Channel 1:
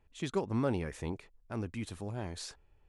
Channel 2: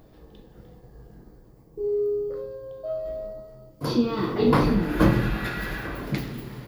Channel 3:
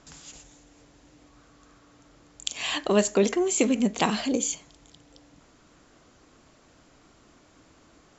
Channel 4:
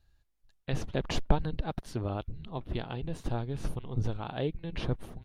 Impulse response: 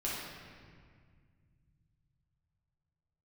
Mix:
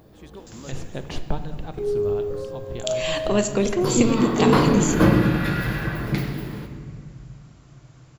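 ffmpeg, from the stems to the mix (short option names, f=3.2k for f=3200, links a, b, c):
-filter_complex "[0:a]volume=-10.5dB[a];[1:a]highpass=44,volume=-0.5dB,asplit=2[b][c];[c]volume=-6dB[d];[2:a]adelay=400,volume=-1.5dB,asplit=2[e][f];[f]volume=-11dB[g];[3:a]volume=-3dB,asplit=2[h][i];[i]volume=-11dB[j];[4:a]atrim=start_sample=2205[k];[d][g][j]amix=inputs=3:normalize=0[l];[l][k]afir=irnorm=-1:irlink=0[m];[a][b][e][h][m]amix=inputs=5:normalize=0"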